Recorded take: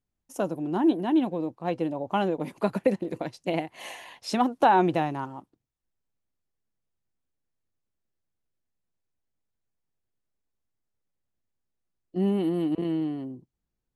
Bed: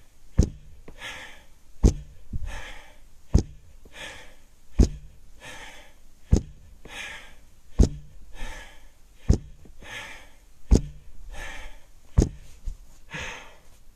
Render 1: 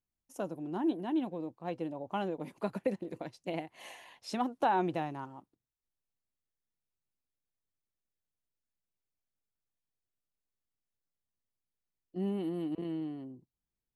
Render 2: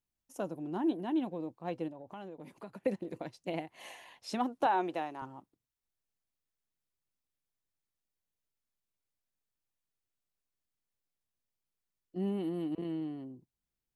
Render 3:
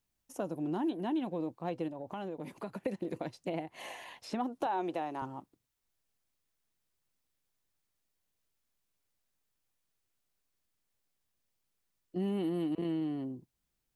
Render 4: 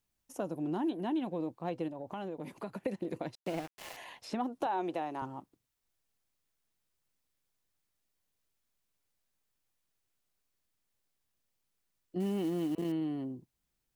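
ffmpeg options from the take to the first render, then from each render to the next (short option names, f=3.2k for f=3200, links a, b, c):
-af "volume=-9dB"
-filter_complex "[0:a]asettb=1/sr,asplit=3[a][b][c];[a]atrim=end=1.884[d];[b]atrim=start=1.88:end=2.83,asetpts=PTS-STARTPTS,afade=t=in:d=0.004:c=qsin,afade=t=out:st=0.946:d=0.004:c=qsin,acompressor=threshold=-47dB:ratio=2.5:attack=3.2:release=140:knee=1:detection=peak[e];[c]atrim=start=2.826[f];[d][e]acrossfade=d=0.004:c1=hsin:c2=qsin[g];[g][f]acrossfade=d=0.004:c1=qsin:c2=hsin,asettb=1/sr,asplit=3[h][i][j];[h]atrim=end=4.664[k];[i]atrim=start=4.66:end=5.22,asetpts=PTS-STARTPTS,afade=t=in:d=0.004:c=qsin,afade=t=out:st=0.556:d=0.004:c=qsin,highpass=340[l];[j]atrim=start=5.216[m];[k][l]acrossfade=d=0.004:c1=hsin:c2=qsin[n];[n][m]acrossfade=d=0.004:c1=qsin:c2=hsin"
-filter_complex "[0:a]acrossover=split=1200|2500[a][b][c];[a]acompressor=threshold=-35dB:ratio=4[d];[b]acompressor=threshold=-56dB:ratio=4[e];[c]acompressor=threshold=-58dB:ratio=4[f];[d][e][f]amix=inputs=3:normalize=0,asplit=2[g][h];[h]alimiter=level_in=11dB:limit=-24dB:level=0:latency=1:release=222,volume=-11dB,volume=1dB[i];[g][i]amix=inputs=2:normalize=0"
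-filter_complex "[0:a]asettb=1/sr,asplit=3[a][b][c];[a]atrim=end=3.354[d];[b]atrim=start=3.35:end=3.97,asetpts=PTS-STARTPTS,afade=t=in:d=0.004:c=qsin,afade=t=out:st=0.616:d=0.004:c=qsin,aeval=exprs='val(0)*gte(abs(val(0)),0.00794)':c=same[e];[c]atrim=start=3.966[f];[d][e]acrossfade=d=0.004:c1=hsin:c2=qsin[g];[g][f]acrossfade=d=0.004:c1=qsin:c2=hsin,asettb=1/sr,asplit=3[h][i][j];[h]atrim=end=12.204[k];[i]atrim=start=12.2:end=12.92,asetpts=PTS-STARTPTS,afade=t=in:d=0.004:c=qsin,afade=t=out:st=0.716:d=0.004:c=qsin,acrusher=bits=6:mode=log:mix=0:aa=0.000001[l];[j]atrim=start=12.916[m];[k][l]acrossfade=d=0.004:c1=hsin:c2=qsin[n];[n][m]acrossfade=d=0.004:c1=qsin:c2=hsin"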